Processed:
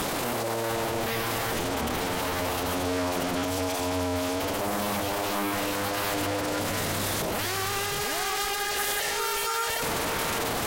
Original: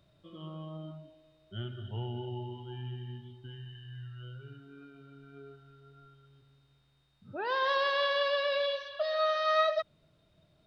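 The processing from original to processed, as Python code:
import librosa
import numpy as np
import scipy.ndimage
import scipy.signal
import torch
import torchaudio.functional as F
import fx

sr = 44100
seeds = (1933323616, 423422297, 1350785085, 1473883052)

p1 = fx.delta_mod(x, sr, bps=64000, step_db=-32.0)
p2 = scipy.signal.sosfilt(scipy.signal.butter(2, 79.0, 'highpass', fs=sr, output='sos'), p1)
p3 = fx.low_shelf(p2, sr, hz=380.0, db=-6.0)
p4 = fx.rider(p3, sr, range_db=4, speed_s=0.5)
p5 = p3 + (p4 * librosa.db_to_amplitude(-0.5))
p6 = scipy.signal.sosfilt(scipy.signal.butter(2, 2100.0, 'lowpass', fs=sr, output='sos'), p5)
p7 = fx.leveller(p6, sr, passes=5)
p8 = p7 + fx.echo_single(p7, sr, ms=703, db=-19.5, dry=0)
p9 = fx.fold_sine(p8, sr, drive_db=15, ceiling_db=-15.0)
p10 = fx.pitch_keep_formants(p9, sr, semitones=-5.5)
y = p10 * librosa.db_to_amplitude(-9.0)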